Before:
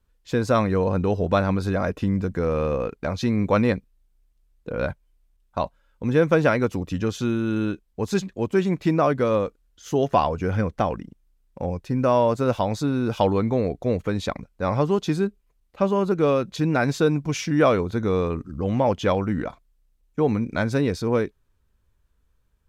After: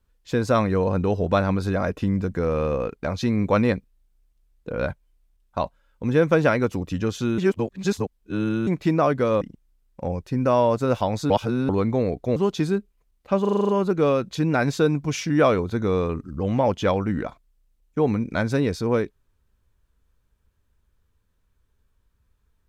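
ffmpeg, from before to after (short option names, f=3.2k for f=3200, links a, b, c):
-filter_complex "[0:a]asplit=14[a][b][c][d][e][f][g][h][i][j][k][l][m][n];[a]atrim=end=7.382[o];[b]atrim=start=7.378:end=8.672,asetpts=PTS-STARTPTS,areverse[p];[c]atrim=start=8.668:end=9.412[q];[d]atrim=start=10.988:end=12.882[r];[e]atrim=start=12.878:end=13.272,asetpts=PTS-STARTPTS,areverse[s];[f]atrim=start=13.268:end=13.942[t];[g]atrim=start=14.848:end=15.942[u];[h]atrim=start=15.898:end=15.942[v];[i]atrim=start=15.898:end=15.942[w];[j]atrim=start=15.898:end=15.942[x];[k]atrim=start=15.898:end=15.942[y];[l]atrim=start=15.898:end=15.942[z];[m]atrim=start=15.898:end=15.942[aa];[n]atrim=start=15.898[ab];[o][p]acrossfade=d=0.004:c1=hsin:c2=hsin[ac];[ac][q]acrossfade=d=0.004:c1=hsin:c2=hsin[ad];[ad][r]acrossfade=d=0.004:c1=hsin:c2=hsin[ae];[ae][s]acrossfade=d=0.004:c1=hsin:c2=hsin[af];[af][t]acrossfade=d=0.004:c1=hsin:c2=hsin[ag];[ag][u]acrossfade=d=0.004:c1=hsin:c2=hsin[ah];[ah][v]acrossfade=d=0.004:c1=hsin:c2=hsin[ai];[ai][w]acrossfade=d=0.004:c1=hsin:c2=hsin[aj];[aj][x]acrossfade=d=0.004:c1=hsin:c2=hsin[ak];[ak][y]acrossfade=d=0.004:c1=hsin:c2=hsin[al];[al][z]acrossfade=d=0.004:c1=hsin:c2=hsin[am];[am][aa]acrossfade=d=0.004:c1=hsin:c2=hsin[an];[an][ab]acrossfade=d=0.004:c1=hsin:c2=hsin"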